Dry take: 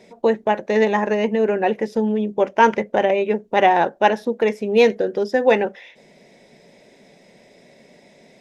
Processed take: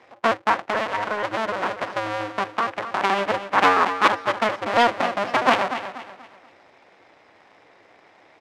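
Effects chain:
sub-harmonics by changed cycles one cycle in 2, inverted
low-pass filter 1,600 Hz 12 dB per octave
spectral tilt +4.5 dB per octave
0:00.61–0:03.01: downward compressor, threshold −21 dBFS, peak gain reduction 11 dB
repeating echo 241 ms, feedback 36%, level −10.5 dB
highs frequency-modulated by the lows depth 0.3 ms

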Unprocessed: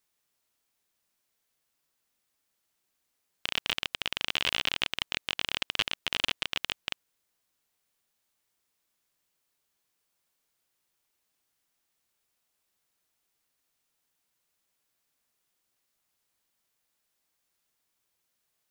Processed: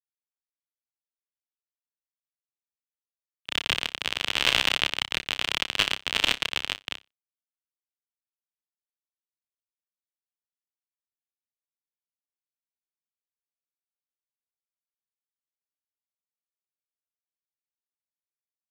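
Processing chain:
harmonic generator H 7 −32 dB, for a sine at −5 dBFS
in parallel at +2.5 dB: brickwall limiter −14 dBFS, peak gain reduction 9 dB
on the sum: noise gate with hold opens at −58 dBFS
dead-zone distortion −39.5 dBFS
on a send: flutter between parallel walls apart 5.2 metres, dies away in 0.21 s
on the sum: multiband upward and downward expander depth 100%

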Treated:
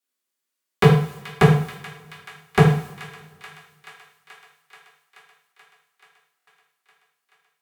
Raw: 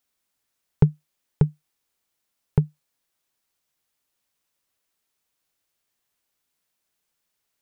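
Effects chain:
downward expander −49 dBFS
high-pass filter 210 Hz 24 dB per octave
parametric band 730 Hz −7 dB 0.42 octaves
in parallel at +2.5 dB: output level in coarse steps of 14 dB
on the sum: harmonic generator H 5 −14 dB, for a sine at −6 dBFS
sine wavefolder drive 13 dB, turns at −5.5 dBFS
delay with a high-pass on its return 431 ms, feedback 76%, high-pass 1,500 Hz, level −13.5 dB
coupled-rooms reverb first 0.52 s, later 2.1 s, from −21 dB, DRR −6 dB
buffer that repeats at 0:06.38, samples 1,024, times 3
level −6.5 dB

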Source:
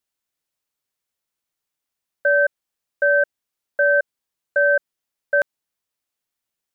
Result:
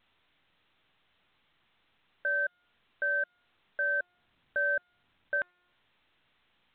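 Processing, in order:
parametric band 510 Hz −11 dB 0.83 octaves
brickwall limiter −23.5 dBFS, peak gain reduction 10 dB
0:04.00–0:05.37: low-shelf EQ 330 Hz +10.5 dB
hum removal 355.9 Hz, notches 7
A-law companding 64 kbit/s 8,000 Hz

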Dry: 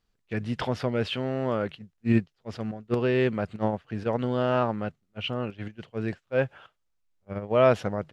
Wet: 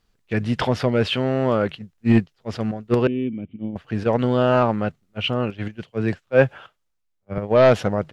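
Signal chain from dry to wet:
sine wavefolder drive 4 dB, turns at −7 dBFS
0:03.07–0:03.76: formant resonators in series i
0:05.83–0:07.38: multiband upward and downward expander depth 40%

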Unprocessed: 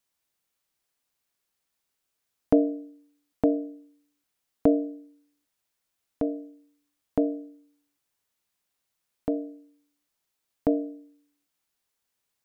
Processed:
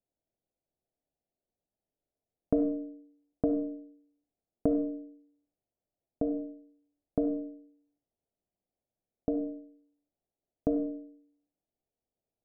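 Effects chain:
Butterworth low-pass 760 Hz 48 dB per octave
downward compressor 2 to 1, threshold −29 dBFS, peak gain reduction 8 dB
on a send: convolution reverb RT60 0.50 s, pre-delay 15 ms, DRR 6 dB

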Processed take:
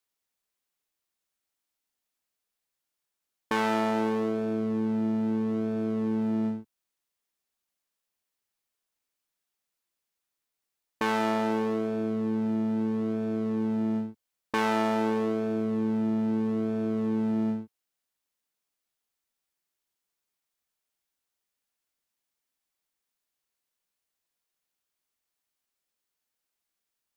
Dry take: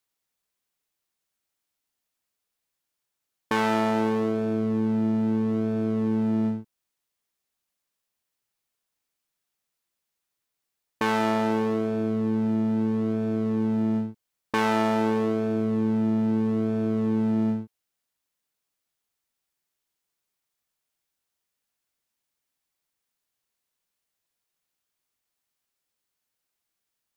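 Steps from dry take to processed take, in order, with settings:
parametric band 120 Hz −6.5 dB 0.66 octaves
level −2.5 dB

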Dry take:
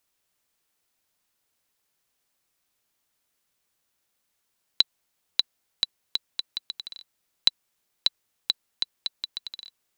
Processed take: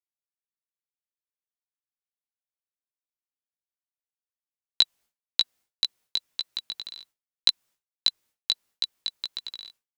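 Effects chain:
downward expander −50 dBFS
chorus effect 1.7 Hz, delay 16 ms, depth 2.7 ms
level +4 dB

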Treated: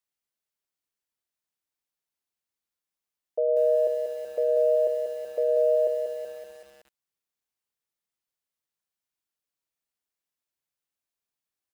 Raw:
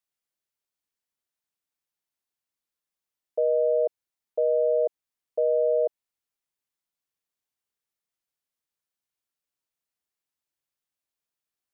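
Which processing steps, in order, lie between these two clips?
on a send: repeating echo 108 ms, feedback 31%, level −14 dB
on the sum: feedback echo at a low word length 189 ms, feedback 55%, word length 8 bits, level −6 dB
level −1.5 dB

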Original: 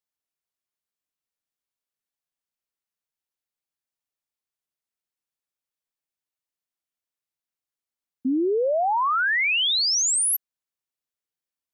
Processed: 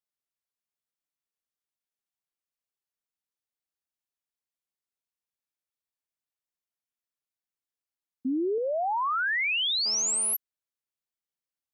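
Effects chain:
0:08.58–0:09.26: parametric band 260 Hz −13.5 dB 0.66 octaves
0:09.86–0:10.34: phone interference −40 dBFS
level −5 dB

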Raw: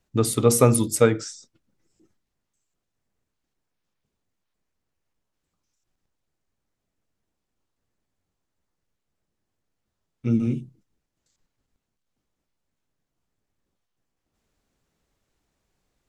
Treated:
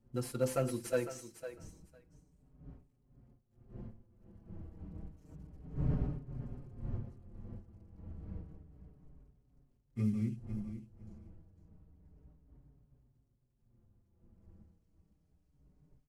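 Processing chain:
variable-slope delta modulation 64 kbit/s
wind on the microphone 140 Hz −43 dBFS
source passing by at 0:06.22, 30 m/s, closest 26 metres
notch filter 3,600 Hz, Q 8.7
on a send: repeating echo 504 ms, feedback 16%, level −11 dB
on the sum: barber-pole flanger 5.2 ms −0.3 Hz
level +4 dB

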